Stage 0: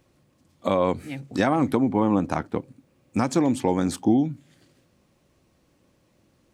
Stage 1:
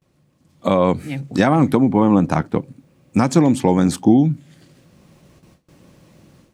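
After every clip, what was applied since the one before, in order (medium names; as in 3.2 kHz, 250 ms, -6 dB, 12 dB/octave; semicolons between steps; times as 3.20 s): peaking EQ 160 Hz +7.5 dB 0.56 oct; gate with hold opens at -53 dBFS; level rider gain up to 13.5 dB; trim -1 dB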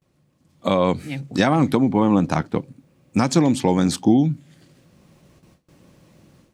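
dynamic bell 4.3 kHz, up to +7 dB, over -42 dBFS, Q 0.82; trim -3 dB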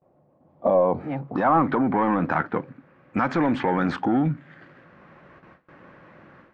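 peak limiter -13.5 dBFS, peak gain reduction 9.5 dB; overdrive pedal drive 14 dB, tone 4 kHz, clips at -13.5 dBFS; low-pass sweep 710 Hz -> 1.6 kHz, 0.79–1.94 s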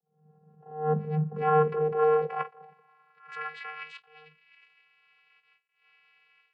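vocoder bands 8, square 153 Hz; high-pass sweep 220 Hz -> 2.6 kHz, 1.29–3.93 s; attacks held to a fixed rise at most 110 dB/s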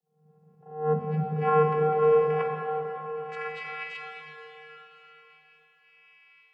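plate-style reverb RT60 4.4 s, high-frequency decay 0.9×, DRR 0.5 dB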